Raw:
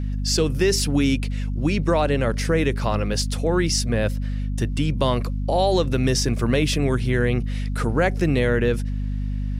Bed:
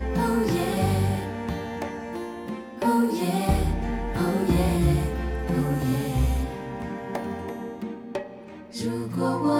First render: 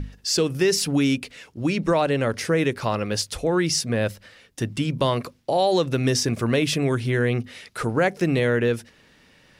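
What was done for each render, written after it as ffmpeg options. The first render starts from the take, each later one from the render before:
-af "bandreject=f=50:t=h:w=6,bandreject=f=100:t=h:w=6,bandreject=f=150:t=h:w=6,bandreject=f=200:t=h:w=6,bandreject=f=250:t=h:w=6"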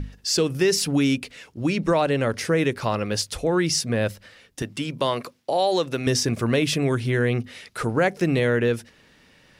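-filter_complex "[0:a]asettb=1/sr,asplit=3[a][b][c];[a]atrim=end=4.624[d];[b]atrim=start=4.62:end=6.07,asetpts=PTS-STARTPTS,afade=t=in:d=0.004:c=qsin,afade=t=out:st=1.446:d=0.004:c=qsin,highpass=f=320:p=1[e];[c]atrim=start=6.066[f];[d][e]acrossfade=d=0.004:c1=hsin:c2=qsin[g];[g][f]acrossfade=d=0.004:c1=qsin:c2=hsin"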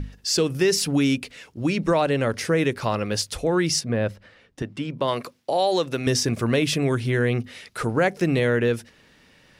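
-filter_complex "[0:a]asplit=3[a][b][c];[a]afade=t=out:st=3.79:d=0.02[d];[b]lowpass=f=1.8k:p=1,afade=t=in:st=3.79:d=0.02,afade=t=out:st=5.07:d=0.02[e];[c]afade=t=in:st=5.07:d=0.02[f];[d][e][f]amix=inputs=3:normalize=0"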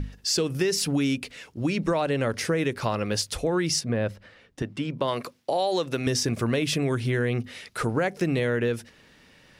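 -af "acompressor=threshold=-22dB:ratio=3"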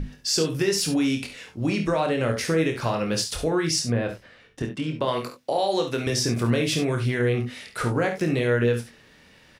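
-filter_complex "[0:a]asplit=2[a][b];[b]adelay=25,volume=-6dB[c];[a][c]amix=inputs=2:normalize=0,aecho=1:1:52|68:0.299|0.282"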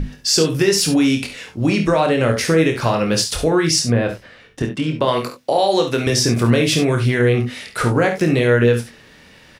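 -af "volume=7.5dB"

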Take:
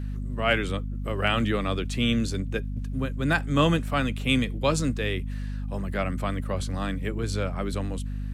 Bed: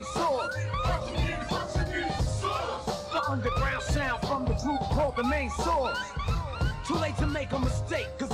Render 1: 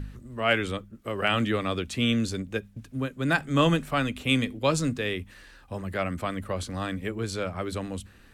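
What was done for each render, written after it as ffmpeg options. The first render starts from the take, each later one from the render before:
-af "bandreject=f=50:t=h:w=4,bandreject=f=100:t=h:w=4,bandreject=f=150:t=h:w=4,bandreject=f=200:t=h:w=4,bandreject=f=250:t=h:w=4"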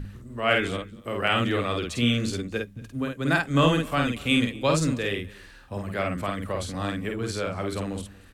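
-filter_complex "[0:a]asplit=2[a][b];[b]adelay=50,volume=-3dB[c];[a][c]amix=inputs=2:normalize=0,aecho=1:1:232:0.0708"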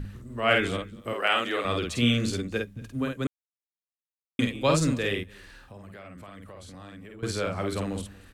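-filter_complex "[0:a]asettb=1/sr,asplit=3[a][b][c];[a]atrim=end=1.134[d];[b]atrim=start=1.13:end=1.65,asetpts=PTS-STARTPTS,afade=t=in:d=0.004:c=qsin,afade=t=out:st=0.516:d=0.004:c=qsin,highpass=430[e];[c]atrim=start=1.646[f];[d][e]acrossfade=d=0.004:c1=hsin:c2=qsin[g];[g][f]acrossfade=d=0.004:c1=qsin:c2=hsin,asettb=1/sr,asplit=3[h][i][j];[h]atrim=end=5.234[k];[i]atrim=start=5.23:end=7.23,asetpts=PTS-STARTPTS,afade=t=in:d=0.004:c=qsin,afade=t=out:st=1.996:d=0.004:c=qsin,acompressor=threshold=-43dB:ratio=5:attack=3.2:release=140:knee=1:detection=peak[l];[j]atrim=start=7.226[m];[k][l]acrossfade=d=0.004:c1=hsin:c2=qsin[n];[n][m]acrossfade=d=0.004:c1=qsin:c2=hsin,asplit=3[o][p][q];[o]atrim=end=3.27,asetpts=PTS-STARTPTS,afade=t=out:st=3.266:d=0.004:c=hsin[r];[p]atrim=start=3.27:end=4.39,asetpts=PTS-STARTPTS,volume=0[s];[q]atrim=start=4.39,asetpts=PTS-STARTPTS,afade=t=in:d=0.004:c=hsin[t];[r][s][t]concat=n=3:v=0:a=1"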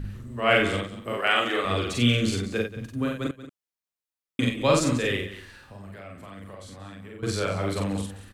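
-filter_complex "[0:a]asplit=2[a][b];[b]adelay=41,volume=-2.5dB[c];[a][c]amix=inputs=2:normalize=0,aecho=1:1:183:0.2"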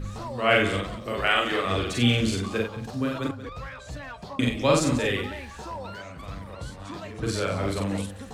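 -filter_complex "[1:a]volume=-10dB[a];[0:a][a]amix=inputs=2:normalize=0"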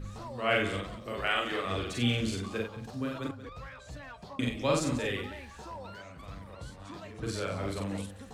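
-af "volume=-7dB"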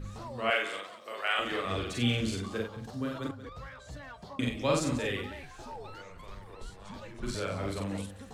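-filter_complex "[0:a]asettb=1/sr,asplit=3[a][b][c];[a]atrim=end=0.504[d];[b]atrim=start=0.5:end=1.39,asetpts=PTS-STARTPTS,afade=t=in:d=0.004:c=qsin,afade=t=out:st=0.886:d=0.004:c=qsin,highpass=590[e];[c]atrim=start=1.386[f];[d][e]acrossfade=d=0.004:c1=hsin:c2=qsin[g];[g][f]acrossfade=d=0.004:c1=qsin:c2=hsin,asettb=1/sr,asplit=3[h][i][j];[h]atrim=end=2.434[k];[i]atrim=start=2.43:end=4.37,asetpts=PTS-STARTPTS,afade=t=in:d=0.004:c=qsin,afade=t=out:st=1.936:d=0.004:c=qsin,bandreject=f=2.5k:w=10[l];[j]atrim=start=4.366[m];[k][l]acrossfade=d=0.004:c1=hsin:c2=qsin[n];[n][m]acrossfade=d=0.004:c1=qsin:c2=hsin,asettb=1/sr,asplit=3[o][p][q];[o]atrim=end=5.434[r];[p]atrim=start=5.43:end=7.35,asetpts=PTS-STARTPTS,afade=t=in:d=0.004:c=qsin,afade=t=out:st=1.916:d=0.004:c=qsin,afreqshift=-92[s];[q]atrim=start=7.346[t];[r][s]acrossfade=d=0.004:c1=hsin:c2=qsin[u];[u][t]acrossfade=d=0.004:c1=qsin:c2=hsin"

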